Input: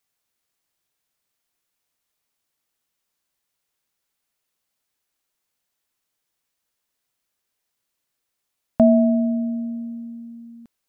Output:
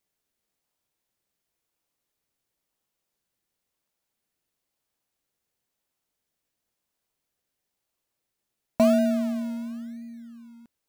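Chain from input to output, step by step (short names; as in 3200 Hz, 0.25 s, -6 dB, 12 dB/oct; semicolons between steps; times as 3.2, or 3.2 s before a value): low shelf 180 Hz -10.5 dB; in parallel at -9 dB: decimation with a swept rate 29×, swing 60% 0.97 Hz; on the sum: gain -4.5 dB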